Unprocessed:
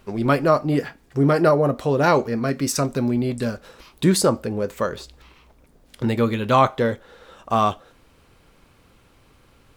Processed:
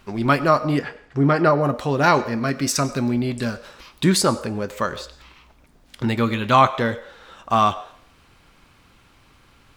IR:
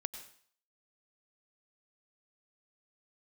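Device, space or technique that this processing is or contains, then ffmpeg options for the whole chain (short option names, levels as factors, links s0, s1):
filtered reverb send: -filter_complex "[0:a]asettb=1/sr,asplit=3[s0][s1][s2];[s0]atrim=end=0.794[s3];[s1]atrim=start=0.79:end=1.61,asetpts=PTS-STARTPTS,afade=t=in:d=0.004:c=qsin,afade=t=out:st=0.816:d=0.004:c=qsin,aemphasis=mode=reproduction:type=50fm[s4];[s2]atrim=start=1.606[s5];[s3][s4]acrossfade=d=0.004:c1=hsin:c2=qsin[s6];[s6][s5]acrossfade=d=0.004:c1=qsin:c2=hsin,asplit=2[s7][s8];[s8]highpass=f=460:w=0.5412,highpass=f=460:w=1.3066,lowpass=8100[s9];[1:a]atrim=start_sample=2205[s10];[s9][s10]afir=irnorm=-1:irlink=0,volume=0.668[s11];[s7][s11]amix=inputs=2:normalize=0"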